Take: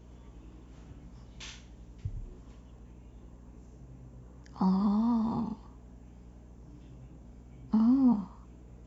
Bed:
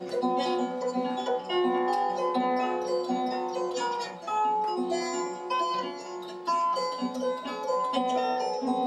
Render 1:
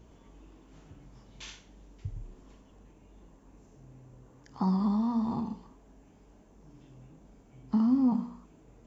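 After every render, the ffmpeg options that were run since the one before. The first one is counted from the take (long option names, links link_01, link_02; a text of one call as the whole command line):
ffmpeg -i in.wav -af "bandreject=frequency=60:width_type=h:width=4,bandreject=frequency=120:width_type=h:width=4,bandreject=frequency=180:width_type=h:width=4,bandreject=frequency=240:width_type=h:width=4,bandreject=frequency=300:width_type=h:width=4,bandreject=frequency=360:width_type=h:width=4,bandreject=frequency=420:width_type=h:width=4,bandreject=frequency=480:width_type=h:width=4,bandreject=frequency=540:width_type=h:width=4,bandreject=frequency=600:width_type=h:width=4" out.wav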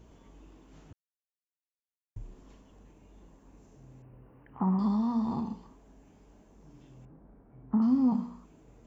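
ffmpeg -i in.wav -filter_complex "[0:a]asettb=1/sr,asplit=3[link_01][link_02][link_03];[link_01]atrim=end=4.024[link_04];[link_02]atrim=start=4.02:end=4.79,asetpts=PTS-STARTPTS,afade=type=in:duration=0.004:curve=qsin,afade=type=out:start_time=0.766:duration=0.004:curve=qsin,asuperstop=centerf=5500:order=20:qfactor=0.83[link_05];[link_03]atrim=start=4.786[link_06];[link_04][link_05]acrossfade=duration=0.004:curve1=hsin:curve2=qsin[link_07];[link_07][link_06]acrossfade=duration=0.004:curve1=qsin:curve2=hsin,asettb=1/sr,asplit=3[link_08][link_09][link_10];[link_08]atrim=end=7.054[link_11];[link_09]atrim=start=7.05:end=7.82,asetpts=PTS-STARTPTS,afade=type=in:duration=0.004:curve=qsin,afade=type=out:start_time=0.766:duration=0.004:curve=qsin,lowpass=frequency=1700:width=0.5412,lowpass=frequency=1700:width=1.3066[link_12];[link_10]atrim=start=7.816[link_13];[link_11][link_12]acrossfade=duration=0.004:curve1=hsin:curve2=qsin[link_14];[link_14][link_13]acrossfade=duration=0.004:curve1=qsin:curve2=hsin,asplit=3[link_15][link_16][link_17];[link_15]atrim=end=0.93,asetpts=PTS-STARTPTS,afade=type=out:start_time=0.926:duration=0.004:curve=hsin[link_18];[link_16]atrim=start=0.93:end=2.16,asetpts=PTS-STARTPTS,volume=0[link_19];[link_17]atrim=start=2.16,asetpts=PTS-STARTPTS,afade=type=in:duration=0.004:curve=hsin[link_20];[link_18][link_19][link_20]concat=n=3:v=0:a=1" out.wav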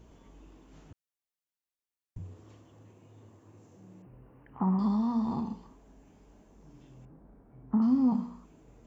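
ffmpeg -i in.wav -filter_complex "[0:a]asettb=1/sr,asplit=3[link_01][link_02][link_03];[link_01]atrim=end=2.184[link_04];[link_02]atrim=start=2.18:end=4.07,asetpts=PTS-STARTPTS,afade=type=in:duration=0.004:curve=qsin,afade=type=out:start_time=1.886:duration=0.004:curve=qsin,afreqshift=57[link_05];[link_03]atrim=start=4.066[link_06];[link_04][link_05]acrossfade=duration=0.004:curve1=hsin:curve2=qsin[link_07];[link_07][link_06]acrossfade=duration=0.004:curve1=qsin:curve2=hsin" out.wav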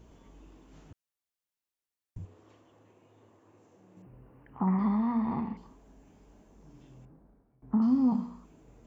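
ffmpeg -i in.wav -filter_complex "[0:a]asettb=1/sr,asplit=3[link_01][link_02][link_03];[link_01]atrim=end=2.254[link_04];[link_02]atrim=start=2.25:end=3.97,asetpts=PTS-STARTPTS,afade=type=in:duration=0.004:curve=qsin,afade=type=out:start_time=1.716:duration=0.004:curve=qsin,bass=frequency=250:gain=-11,treble=frequency=4000:gain=-6[link_05];[link_03]atrim=start=3.966[link_06];[link_04][link_05]acrossfade=duration=0.004:curve1=hsin:curve2=qsin[link_07];[link_07][link_06]acrossfade=duration=0.004:curve1=qsin:curve2=hsin,asettb=1/sr,asplit=3[link_08][link_09][link_10];[link_08]atrim=end=4.674[link_11];[link_09]atrim=start=4.67:end=5.57,asetpts=PTS-STARTPTS,afade=type=in:duration=0.004:curve=qsin,afade=type=out:start_time=0.896:duration=0.004:curve=qsin,lowpass=frequency=2100:width_type=q:width=10[link_12];[link_10]atrim=start=5.566[link_13];[link_11][link_12]acrossfade=duration=0.004:curve1=hsin:curve2=qsin[link_14];[link_14][link_13]acrossfade=duration=0.004:curve1=qsin:curve2=hsin,asplit=2[link_15][link_16];[link_15]atrim=end=7.62,asetpts=PTS-STARTPTS,afade=type=out:start_time=6.96:duration=0.66:silence=0.1[link_17];[link_16]atrim=start=7.62,asetpts=PTS-STARTPTS,afade=type=in:duration=0.004:curve=hsin:silence=0.1[link_18];[link_17][link_18]concat=n=2:v=0:a=1" out.wav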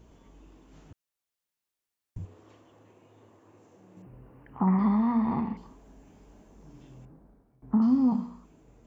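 ffmpeg -i in.wav -af "dynaudnorm=framelen=210:gausssize=11:maxgain=3.5dB" out.wav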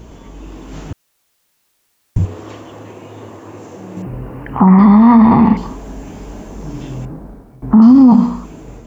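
ffmpeg -i in.wav -af "dynaudnorm=framelen=350:gausssize=3:maxgain=5dB,alimiter=level_in=19dB:limit=-1dB:release=50:level=0:latency=1" out.wav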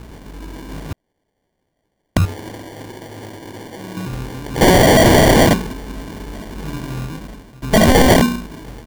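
ffmpeg -i in.wav -af "aresample=8000,aeval=exprs='(mod(1.88*val(0)+1,2)-1)/1.88':channel_layout=same,aresample=44100,acrusher=samples=34:mix=1:aa=0.000001" out.wav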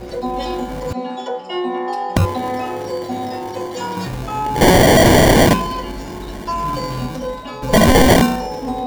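ffmpeg -i in.wav -i bed.wav -filter_complex "[1:a]volume=4dB[link_01];[0:a][link_01]amix=inputs=2:normalize=0" out.wav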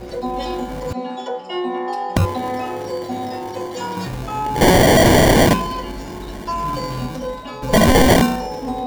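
ffmpeg -i in.wav -af "volume=-1.5dB" out.wav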